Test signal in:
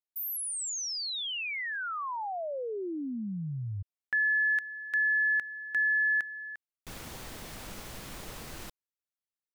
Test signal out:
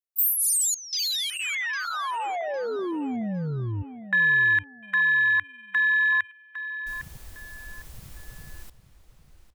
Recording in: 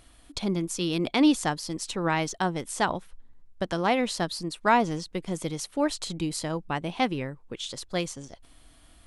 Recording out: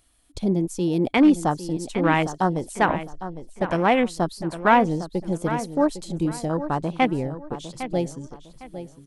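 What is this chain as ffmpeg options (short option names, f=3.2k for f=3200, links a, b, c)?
-filter_complex "[0:a]asoftclip=type=tanh:threshold=-12.5dB,highshelf=f=6.1k:g=10.5,afwtdn=0.0282,asplit=2[a][b];[b]adelay=806,lowpass=f=4.8k:p=1,volume=-11.5dB,asplit=2[c][d];[d]adelay=806,lowpass=f=4.8k:p=1,volume=0.29,asplit=2[e][f];[f]adelay=806,lowpass=f=4.8k:p=1,volume=0.29[g];[c][e][g]amix=inputs=3:normalize=0[h];[a][h]amix=inputs=2:normalize=0,volume=6dB"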